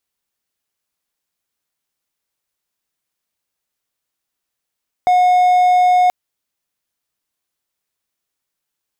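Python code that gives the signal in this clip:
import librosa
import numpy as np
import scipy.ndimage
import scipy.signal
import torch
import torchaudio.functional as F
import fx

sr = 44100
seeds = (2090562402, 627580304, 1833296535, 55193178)

y = 10.0 ** (-7.0 / 20.0) * (1.0 - 4.0 * np.abs(np.mod(725.0 * (np.arange(round(1.03 * sr)) / sr) + 0.25, 1.0) - 0.5))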